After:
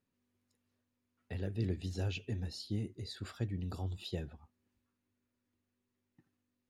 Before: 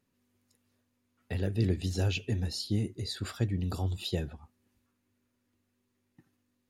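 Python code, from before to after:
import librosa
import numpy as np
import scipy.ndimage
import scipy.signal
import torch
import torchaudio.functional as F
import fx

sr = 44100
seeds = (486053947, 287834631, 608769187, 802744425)

y = fx.high_shelf(x, sr, hz=7100.0, db=-7.5)
y = y * 10.0 ** (-7.0 / 20.0)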